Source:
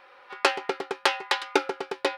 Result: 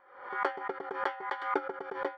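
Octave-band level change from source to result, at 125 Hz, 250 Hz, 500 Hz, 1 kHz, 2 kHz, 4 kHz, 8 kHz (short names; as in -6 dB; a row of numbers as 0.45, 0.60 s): n/a, -7.5 dB, -7.0 dB, -4.5 dB, -8.5 dB, -22.0 dB, under -30 dB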